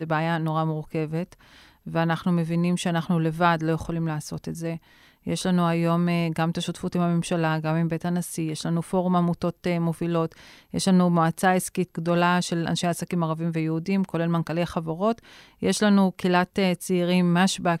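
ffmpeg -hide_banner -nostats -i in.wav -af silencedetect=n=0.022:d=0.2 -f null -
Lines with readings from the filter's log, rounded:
silence_start: 1.33
silence_end: 1.87 | silence_duration: 0.54
silence_start: 4.77
silence_end: 5.27 | silence_duration: 0.50
silence_start: 10.32
silence_end: 10.74 | silence_duration: 0.42
silence_start: 15.18
silence_end: 15.62 | silence_duration: 0.44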